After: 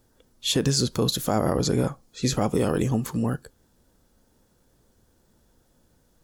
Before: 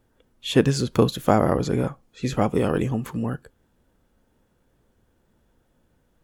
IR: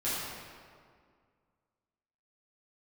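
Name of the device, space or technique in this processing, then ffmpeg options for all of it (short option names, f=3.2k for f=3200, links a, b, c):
over-bright horn tweeter: -af "highshelf=f=3.6k:t=q:w=1.5:g=7,alimiter=limit=-14dB:level=0:latency=1:release=74,volume=1.5dB"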